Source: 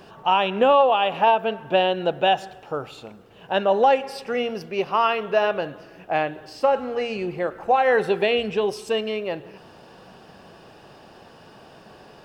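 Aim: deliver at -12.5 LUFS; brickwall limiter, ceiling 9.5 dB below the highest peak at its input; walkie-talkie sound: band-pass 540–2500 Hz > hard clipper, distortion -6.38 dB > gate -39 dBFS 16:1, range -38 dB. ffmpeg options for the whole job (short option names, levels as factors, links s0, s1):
-af "alimiter=limit=0.141:level=0:latency=1,highpass=540,lowpass=2500,asoftclip=type=hard:threshold=0.0282,agate=range=0.0126:threshold=0.0112:ratio=16,volume=13.3"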